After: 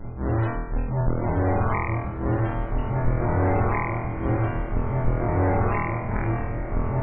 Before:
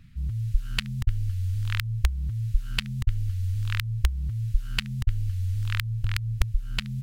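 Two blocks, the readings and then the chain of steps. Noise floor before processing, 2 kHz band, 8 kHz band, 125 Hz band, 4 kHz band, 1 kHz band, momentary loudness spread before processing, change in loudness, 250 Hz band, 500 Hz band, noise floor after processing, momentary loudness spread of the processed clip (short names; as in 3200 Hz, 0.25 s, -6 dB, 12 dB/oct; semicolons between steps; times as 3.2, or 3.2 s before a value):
-39 dBFS, +3.0 dB, under -35 dB, +2.5 dB, under -20 dB, +20.0 dB, 3 LU, +4.0 dB, +14.5 dB, n/a, -31 dBFS, 6 LU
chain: half-waves squared off; de-hum 87.73 Hz, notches 3; reverb removal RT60 1.4 s; bell 6100 Hz -10 dB 2.2 oct; auto swell 0.247 s; flutter echo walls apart 4.2 m, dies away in 0.84 s; soft clip -24 dBFS, distortion -15 dB; loudest bins only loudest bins 64; bloom reverb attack 2.25 s, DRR 5.5 dB; gain +9 dB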